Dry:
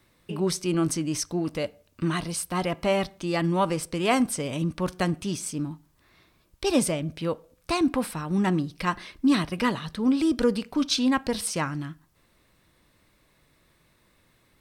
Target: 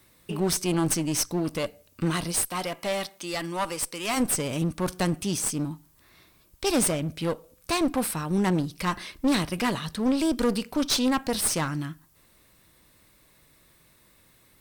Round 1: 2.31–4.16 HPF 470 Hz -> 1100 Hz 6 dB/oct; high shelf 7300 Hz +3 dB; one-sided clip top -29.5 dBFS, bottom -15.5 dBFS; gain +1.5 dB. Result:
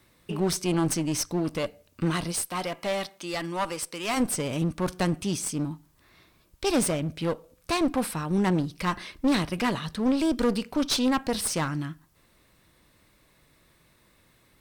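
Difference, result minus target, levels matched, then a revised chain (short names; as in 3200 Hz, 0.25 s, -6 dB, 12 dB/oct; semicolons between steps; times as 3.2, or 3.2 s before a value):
8000 Hz band -3.0 dB
2.31–4.16 HPF 470 Hz -> 1100 Hz 6 dB/oct; high shelf 7300 Hz +12 dB; one-sided clip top -29.5 dBFS, bottom -15.5 dBFS; gain +1.5 dB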